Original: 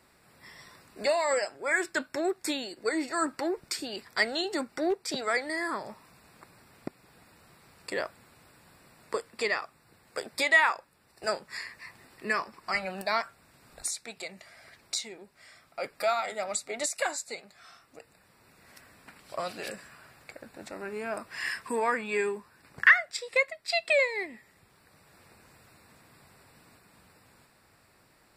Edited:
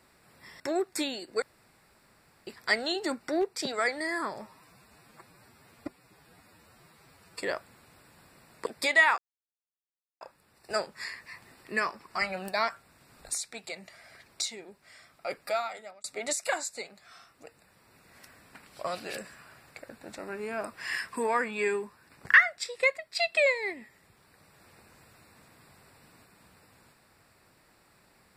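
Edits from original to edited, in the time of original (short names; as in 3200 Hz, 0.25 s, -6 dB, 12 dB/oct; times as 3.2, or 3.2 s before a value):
0.6–2.09 cut
2.91–3.96 room tone
5.91–7.91 stretch 1.5×
9.15–10.22 cut
10.74 insert silence 1.03 s
15.89–16.57 fade out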